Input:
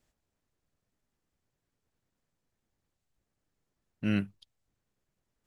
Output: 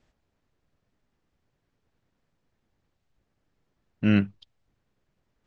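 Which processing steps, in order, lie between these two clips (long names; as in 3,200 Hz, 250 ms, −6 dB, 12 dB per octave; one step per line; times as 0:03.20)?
high-frequency loss of the air 120 metres
level +8 dB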